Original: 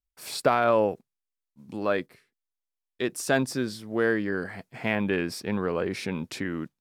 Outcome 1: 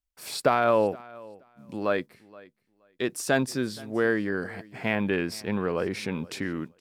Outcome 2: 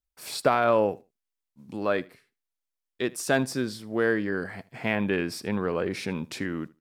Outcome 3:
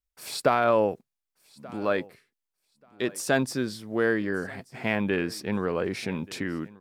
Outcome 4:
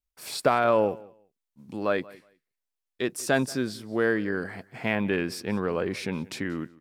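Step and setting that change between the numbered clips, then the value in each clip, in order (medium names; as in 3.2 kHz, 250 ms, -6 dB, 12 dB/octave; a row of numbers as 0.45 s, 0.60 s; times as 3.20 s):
feedback delay, time: 473 ms, 77 ms, 1183 ms, 182 ms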